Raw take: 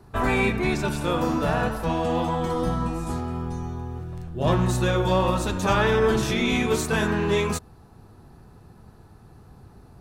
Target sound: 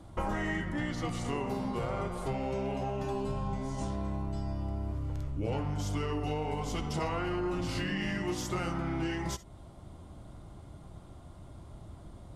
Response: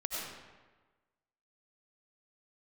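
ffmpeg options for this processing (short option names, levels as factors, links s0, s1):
-filter_complex "[0:a]acompressor=threshold=0.0282:ratio=6,asetrate=35721,aresample=44100[s0];[1:a]atrim=start_sample=2205,atrim=end_sample=3087[s1];[s0][s1]afir=irnorm=-1:irlink=0,volume=1.26"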